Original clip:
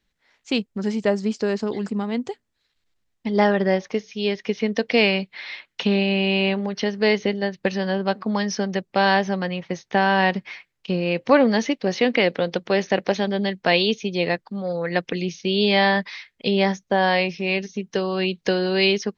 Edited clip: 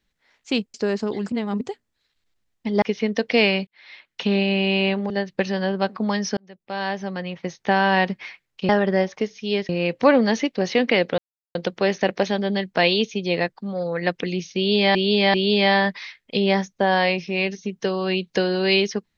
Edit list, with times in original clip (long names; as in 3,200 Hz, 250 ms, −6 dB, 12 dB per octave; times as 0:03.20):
0:00.74–0:01.34: remove
0:01.92–0:02.21: reverse
0:03.42–0:04.42: move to 0:10.95
0:05.27–0:05.97: fade in linear
0:06.70–0:07.36: remove
0:08.63–0:09.89: fade in
0:12.44: splice in silence 0.37 s
0:15.45–0:15.84: repeat, 3 plays